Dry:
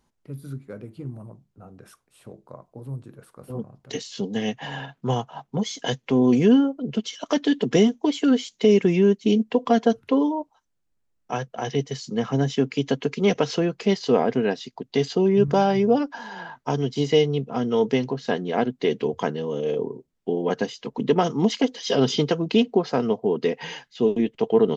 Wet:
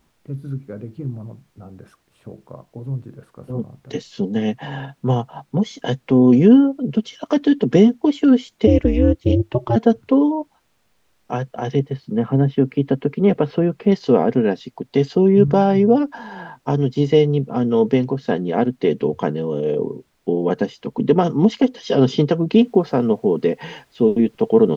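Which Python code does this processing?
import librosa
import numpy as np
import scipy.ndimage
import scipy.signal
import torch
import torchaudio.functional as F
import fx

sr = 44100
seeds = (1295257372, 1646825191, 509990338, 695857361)

y = fx.ring_mod(x, sr, carrier_hz=120.0, at=(8.66, 9.75), fade=0.02)
y = fx.air_absorb(y, sr, metres=310.0, at=(11.79, 13.92))
y = fx.noise_floor_step(y, sr, seeds[0], at_s=22.53, before_db=-63, after_db=-57, tilt_db=0.0)
y = fx.lowpass(y, sr, hz=2500.0, slope=6)
y = fx.low_shelf(y, sr, hz=420.0, db=6.5)
y = y * librosa.db_to_amplitude(1.5)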